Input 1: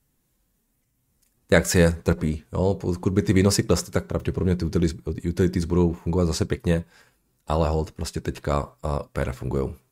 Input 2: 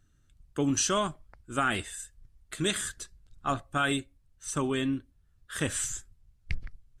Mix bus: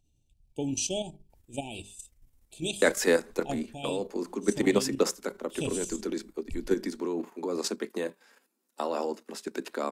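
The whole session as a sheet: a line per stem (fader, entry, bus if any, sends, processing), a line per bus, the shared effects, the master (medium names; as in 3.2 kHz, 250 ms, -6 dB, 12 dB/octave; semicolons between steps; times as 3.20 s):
-0.5 dB, 1.30 s, no send, steep high-pass 210 Hz 72 dB/octave
-0.5 dB, 0.00 s, no send, FFT band-reject 910–2300 Hz; hum notches 50/100/150/200/250/300/350/400 Hz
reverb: none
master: level held to a coarse grid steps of 10 dB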